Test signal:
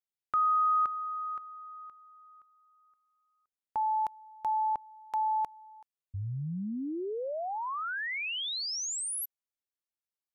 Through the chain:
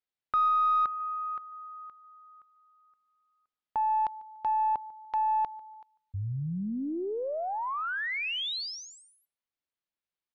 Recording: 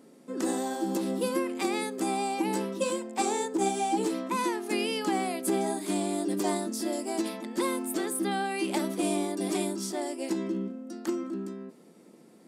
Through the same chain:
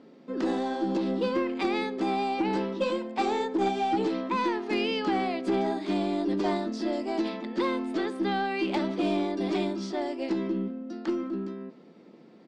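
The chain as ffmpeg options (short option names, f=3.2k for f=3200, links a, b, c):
-filter_complex "[0:a]lowpass=f=4.5k:w=0.5412,lowpass=f=4.5k:w=1.3066,asplit=2[a][b];[b]adelay=146,lowpass=f=3.5k:p=1,volume=-21.5dB,asplit=2[c][d];[d]adelay=146,lowpass=f=3.5k:p=1,volume=0.29[e];[a][c][e]amix=inputs=3:normalize=0,aeval=exprs='0.168*(cos(1*acos(clip(val(0)/0.168,-1,1)))-cos(1*PI/2))+0.00188*(cos(4*acos(clip(val(0)/0.168,-1,1)))-cos(4*PI/2))+0.0168*(cos(5*acos(clip(val(0)/0.168,-1,1)))-cos(5*PI/2))+0.00299*(cos(6*acos(clip(val(0)/0.168,-1,1)))-cos(6*PI/2))+0.00473*(cos(7*acos(clip(val(0)/0.168,-1,1)))-cos(7*PI/2))':c=same"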